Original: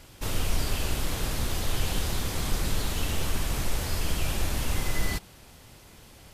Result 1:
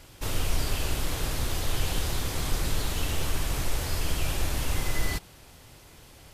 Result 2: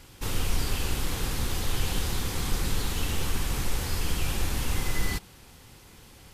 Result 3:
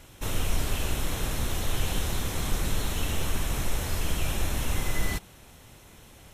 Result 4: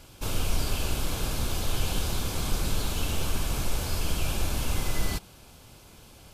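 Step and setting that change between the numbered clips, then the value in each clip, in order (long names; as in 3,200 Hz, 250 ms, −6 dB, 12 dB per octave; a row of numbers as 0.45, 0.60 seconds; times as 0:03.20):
notch filter, centre frequency: 210, 630, 4,700, 1,900 Hertz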